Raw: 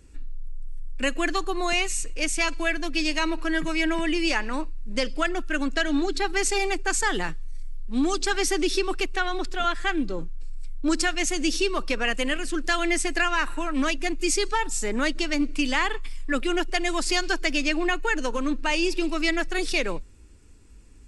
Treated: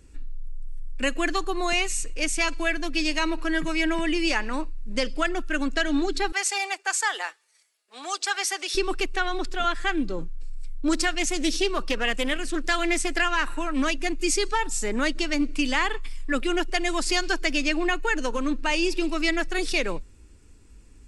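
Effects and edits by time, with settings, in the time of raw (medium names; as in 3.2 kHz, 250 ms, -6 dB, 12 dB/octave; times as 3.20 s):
6.32–8.75 s: high-pass 580 Hz 24 dB/octave
10.93–13.44 s: loudspeaker Doppler distortion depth 0.19 ms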